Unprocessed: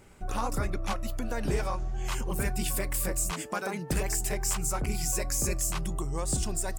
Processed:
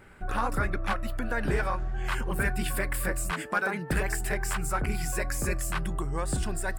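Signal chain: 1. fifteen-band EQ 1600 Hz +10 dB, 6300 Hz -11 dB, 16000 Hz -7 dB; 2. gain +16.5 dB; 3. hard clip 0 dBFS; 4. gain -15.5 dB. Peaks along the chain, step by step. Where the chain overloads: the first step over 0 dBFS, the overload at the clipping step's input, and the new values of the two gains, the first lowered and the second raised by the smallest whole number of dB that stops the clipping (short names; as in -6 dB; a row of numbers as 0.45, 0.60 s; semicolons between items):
-13.0, +3.5, 0.0, -15.5 dBFS; step 2, 3.5 dB; step 2 +12.5 dB, step 4 -11.5 dB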